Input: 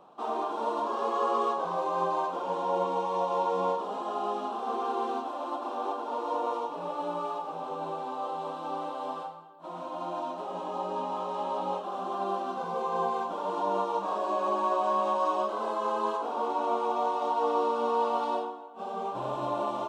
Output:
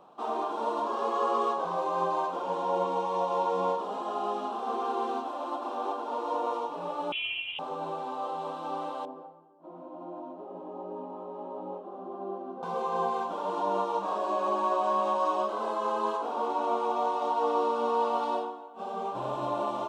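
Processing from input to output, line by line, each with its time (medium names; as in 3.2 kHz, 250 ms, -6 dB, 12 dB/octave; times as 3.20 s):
7.12–7.59 s: frequency inversion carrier 3.6 kHz
9.05–12.63 s: band-pass filter 320 Hz, Q 1.3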